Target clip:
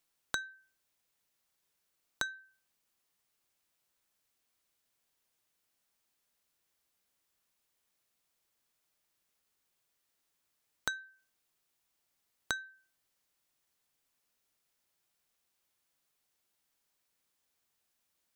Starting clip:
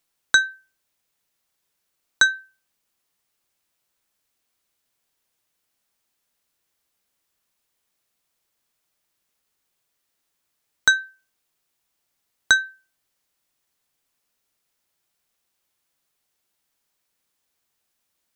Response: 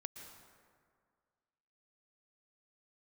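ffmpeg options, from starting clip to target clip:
-af "acompressor=threshold=-29dB:ratio=8,volume=-4.5dB"

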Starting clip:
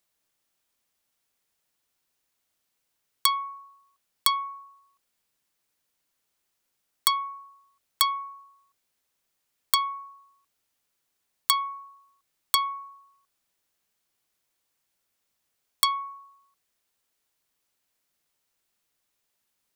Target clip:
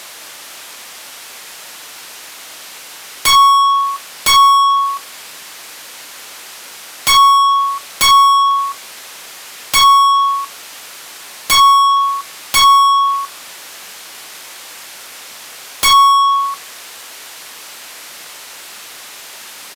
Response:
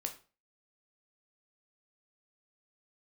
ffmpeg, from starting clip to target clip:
-filter_complex "[0:a]aresample=32000,aresample=44100,asplit=2[link_01][link_02];[1:a]atrim=start_sample=2205[link_03];[link_02][link_03]afir=irnorm=-1:irlink=0,volume=-5dB[link_04];[link_01][link_04]amix=inputs=2:normalize=0,acontrast=52,aeval=exprs='0.944*sin(PI/2*8.91*val(0)/0.944)':channel_layout=same,asplit=2[link_05][link_06];[link_06]highpass=frequency=720:poles=1,volume=28dB,asoftclip=type=tanh:threshold=-0.5dB[link_07];[link_05][link_07]amix=inputs=2:normalize=0,lowpass=frequency=4800:poles=1,volume=-6dB,volume=-4.5dB"

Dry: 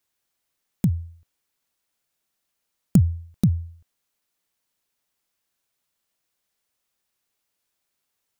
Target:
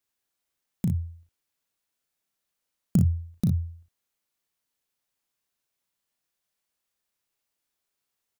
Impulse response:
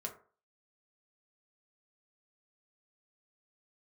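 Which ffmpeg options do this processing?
-af "aecho=1:1:35|58:0.531|0.422,volume=-6dB"

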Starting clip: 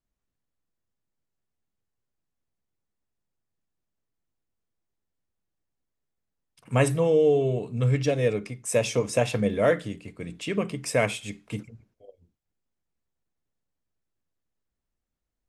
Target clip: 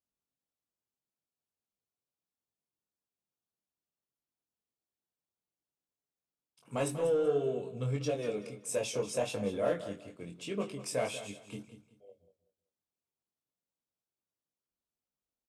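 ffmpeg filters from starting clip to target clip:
ffmpeg -i in.wav -af "highpass=frequency=250:poles=1,equalizer=frequency=1900:width_type=o:width=0.53:gain=-10,asoftclip=type=tanh:threshold=-16dB,flanger=delay=20:depth=3.2:speed=1.6,aecho=1:1:190|380|570:0.224|0.0582|0.0151,volume=-3dB" out.wav

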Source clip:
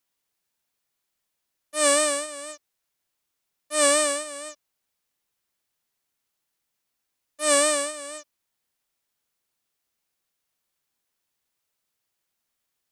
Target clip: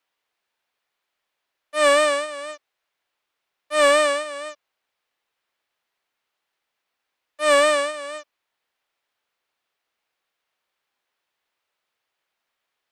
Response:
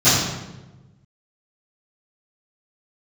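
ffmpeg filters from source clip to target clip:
-filter_complex "[0:a]acrossover=split=390 3900:gain=0.224 1 0.158[link_01][link_02][link_03];[link_01][link_02][link_03]amix=inputs=3:normalize=0,acontrast=88"

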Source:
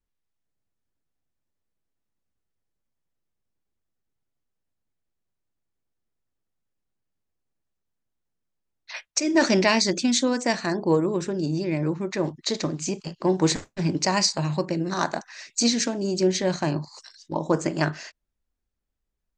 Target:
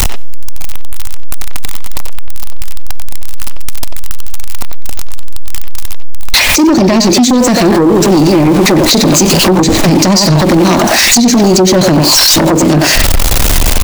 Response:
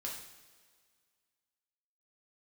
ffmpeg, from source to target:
-filter_complex "[0:a]aeval=exprs='val(0)+0.5*0.0282*sgn(val(0))':channel_layout=same,asplit=2[link_01][link_02];[link_02]adelay=130,highpass=300,lowpass=3400,asoftclip=type=hard:threshold=-15.5dB,volume=-7dB[link_03];[link_01][link_03]amix=inputs=2:normalize=0,asplit=2[link_04][link_05];[1:a]atrim=start_sample=2205[link_06];[link_05][link_06]afir=irnorm=-1:irlink=0,volume=-18.5dB[link_07];[link_04][link_07]amix=inputs=2:normalize=0,acrossover=split=410[link_08][link_09];[link_09]acompressor=threshold=-35dB:ratio=8[link_10];[link_08][link_10]amix=inputs=2:normalize=0,equalizer=frequency=160:width_type=o:width=0.67:gain=-8,equalizer=frequency=400:width_type=o:width=0.67:gain=-6,equalizer=frequency=1600:width_type=o:width=0.67:gain=-6,acompressor=threshold=-33dB:ratio=16,aeval=exprs='0.0596*sin(PI/2*2.51*val(0)/0.0596)':channel_layout=same,lowshelf=frequency=220:gain=-4.5,atempo=1.4,alimiter=level_in=29.5dB:limit=-1dB:release=50:level=0:latency=1,volume=-1dB"

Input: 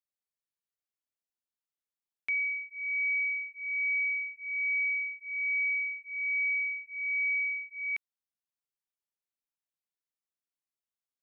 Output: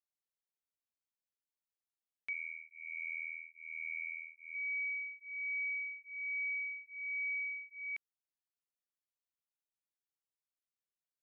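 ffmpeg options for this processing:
ffmpeg -i in.wav -filter_complex "[0:a]asettb=1/sr,asplit=3[link_01][link_02][link_03];[link_01]atrim=end=2.334[link_04];[link_02]atrim=start=2.33:end=4.55,asetpts=PTS-STARTPTS,afade=type=in:duration=0.004:curve=qsin,afade=type=out:start_time=2.216:duration=0.004:curve=qsin,tremolo=f=81:d=1[link_05];[link_03]atrim=start=4.546[link_06];[link_04][link_05]acrossfade=duration=0.004:curve1=hsin:curve2=qsin[link_07];[link_07][link_06]acrossfade=duration=0.004:curve1=qsin:curve2=hsin,volume=-8dB" out.wav

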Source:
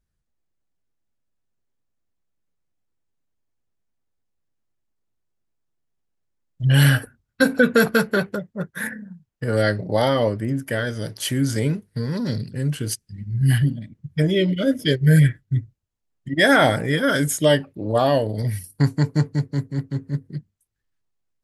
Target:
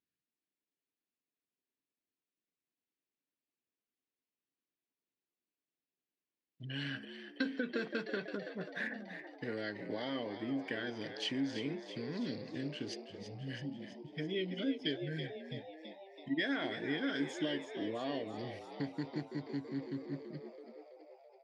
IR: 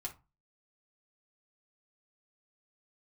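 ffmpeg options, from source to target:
-filter_complex "[0:a]acompressor=threshold=-25dB:ratio=5,highpass=270,equalizer=frequency=280:width_type=q:width=4:gain=6,equalizer=frequency=560:width_type=q:width=4:gain=-8,equalizer=frequency=840:width_type=q:width=4:gain=-7,equalizer=frequency=1300:width_type=q:width=4:gain=-8,equalizer=frequency=2600:width_type=q:width=4:gain=4,lowpass=frequency=4800:width=0.5412,lowpass=frequency=4800:width=1.3066,asplit=9[link_01][link_02][link_03][link_04][link_05][link_06][link_07][link_08][link_09];[link_02]adelay=330,afreqshift=80,volume=-10dB[link_10];[link_03]adelay=660,afreqshift=160,volume=-14dB[link_11];[link_04]adelay=990,afreqshift=240,volume=-18dB[link_12];[link_05]adelay=1320,afreqshift=320,volume=-22dB[link_13];[link_06]adelay=1650,afreqshift=400,volume=-26.1dB[link_14];[link_07]adelay=1980,afreqshift=480,volume=-30.1dB[link_15];[link_08]adelay=2310,afreqshift=560,volume=-34.1dB[link_16];[link_09]adelay=2640,afreqshift=640,volume=-38.1dB[link_17];[link_01][link_10][link_11][link_12][link_13][link_14][link_15][link_16][link_17]amix=inputs=9:normalize=0,volume=-7dB"

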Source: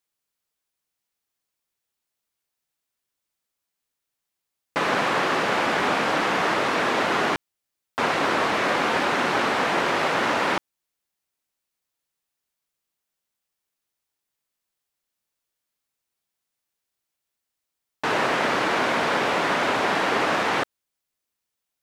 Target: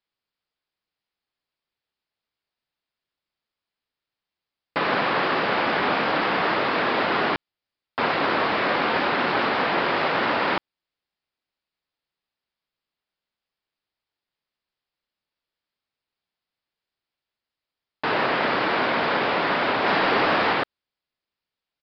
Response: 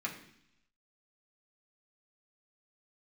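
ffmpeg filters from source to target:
-filter_complex "[0:a]asettb=1/sr,asplit=3[link_01][link_02][link_03];[link_01]atrim=end=19.864[link_04];[link_02]atrim=start=19.86:end=20.53,asetpts=PTS-STARTPTS,afade=type=in:duration=0.004:curve=qsin,afade=type=out:start_time=0.666:duration=0.004:curve=qsin,aeval=exprs='val(0)+0.5*0.0473*sgn(val(0))':channel_layout=same[link_05];[link_03]atrim=start=20.526[link_06];[link_04][link_05]acrossfade=duration=0.004:curve1=hsin:curve2=qsin[link_07];[link_07][link_06]acrossfade=duration=0.004:curve1=qsin:curve2=hsin,aresample=11025,aresample=44100"

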